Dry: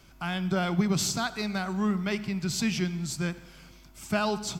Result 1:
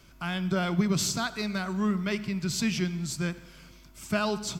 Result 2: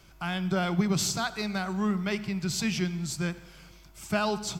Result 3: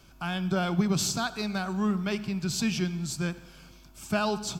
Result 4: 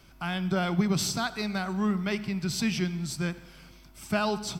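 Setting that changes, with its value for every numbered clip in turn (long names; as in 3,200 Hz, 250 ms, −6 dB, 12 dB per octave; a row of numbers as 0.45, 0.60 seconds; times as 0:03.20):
notch filter, centre frequency: 790, 250, 2,000, 6,900 Hertz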